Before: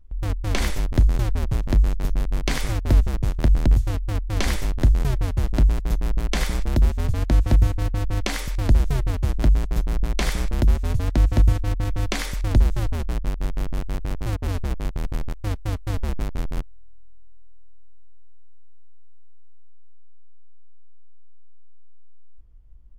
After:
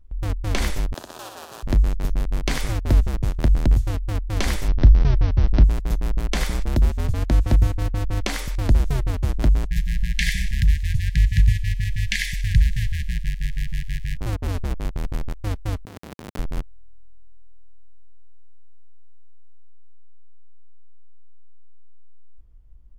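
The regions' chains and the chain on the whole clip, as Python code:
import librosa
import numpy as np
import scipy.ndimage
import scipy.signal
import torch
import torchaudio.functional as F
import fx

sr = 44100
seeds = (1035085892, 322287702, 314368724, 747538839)

y = fx.chain(x, sr, fx.highpass(hz=690.0, slope=12),
    fx.peak_eq(hz=2100.0, db=-14.5, octaves=0.3),
    fx.room_flutter(wall_m=10.7, rt60_s=0.81), at=(0.94, 1.63))
y = fx.chain(y, sr, fx.steep_lowpass(hz=6000.0, slope=96),
    fx.low_shelf(hz=130.0, db=6.0), at=(4.68, 5.64))
y = fx.chain(y, sr, fx.brickwall_bandstop(low_hz=200.0, high_hz=1600.0),
    fx.peak_eq(hz=930.0, db=11.0, octaves=3.0),
    fx.echo_wet_highpass(ms=92, feedback_pct=58, hz=2300.0, wet_db=-15.0), at=(9.66, 14.17))
y = fx.chain(y, sr, fx.halfwave_hold(),
    fx.highpass(hz=150.0, slope=12),
    fx.over_compress(threshold_db=-38.0, ratio=-1.0), at=(15.85, 16.39))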